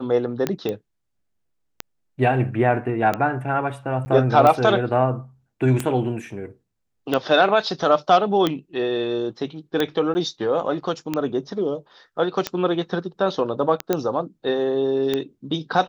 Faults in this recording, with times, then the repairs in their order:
tick 45 rpm -8 dBFS
0.69 pop -14 dBFS
4.05–4.06 gap 10 ms
10.14–10.15 gap 10 ms
13.93 pop -7 dBFS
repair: de-click; interpolate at 4.05, 10 ms; interpolate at 10.14, 10 ms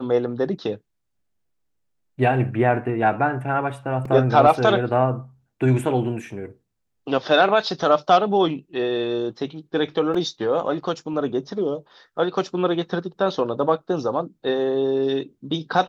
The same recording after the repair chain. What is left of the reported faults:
none

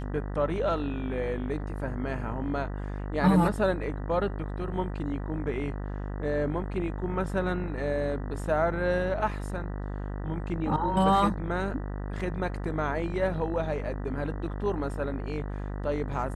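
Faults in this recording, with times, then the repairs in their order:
buzz 50 Hz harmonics 39 -34 dBFS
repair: de-hum 50 Hz, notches 39

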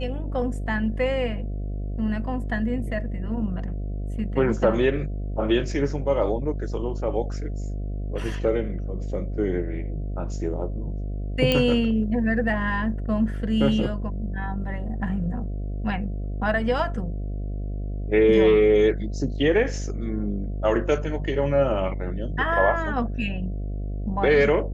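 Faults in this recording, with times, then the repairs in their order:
buzz 50 Hz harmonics 14 -29 dBFS
11.52 pop -8 dBFS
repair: de-click; de-hum 50 Hz, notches 14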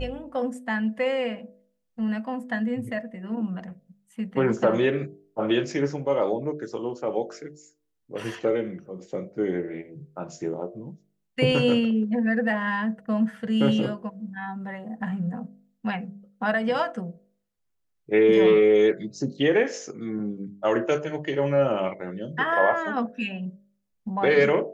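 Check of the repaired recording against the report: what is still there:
11.52 pop

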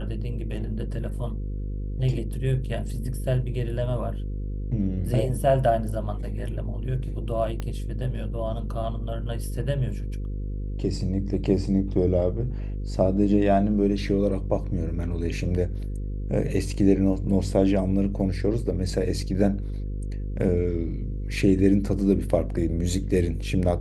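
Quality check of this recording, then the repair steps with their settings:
buzz 50 Hz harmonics 10 -30 dBFS
7.6 pop -18 dBFS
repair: de-click; de-hum 50 Hz, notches 10

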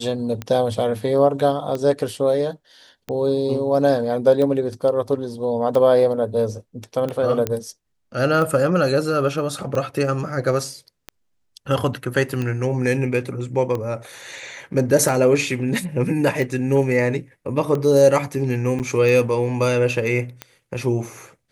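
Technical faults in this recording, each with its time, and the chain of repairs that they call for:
tick 45 rpm -14 dBFS
7.47 pop -8 dBFS
18.79–18.8 gap 8.5 ms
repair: de-click; interpolate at 18.79, 8.5 ms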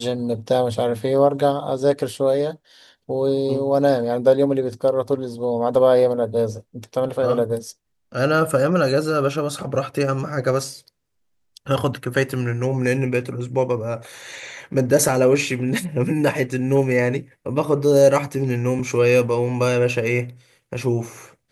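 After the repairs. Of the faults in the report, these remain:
none

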